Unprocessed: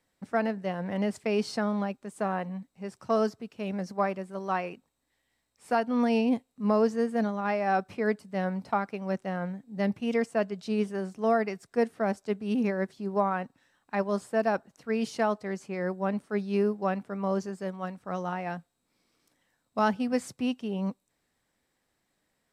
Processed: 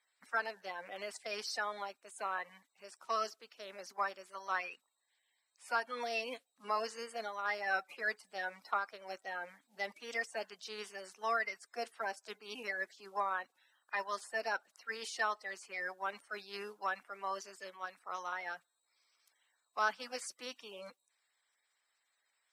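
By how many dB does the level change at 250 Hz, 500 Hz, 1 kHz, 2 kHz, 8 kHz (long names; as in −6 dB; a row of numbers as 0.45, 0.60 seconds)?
−28.5 dB, −14.5 dB, −6.5 dB, −0.5 dB, can't be measured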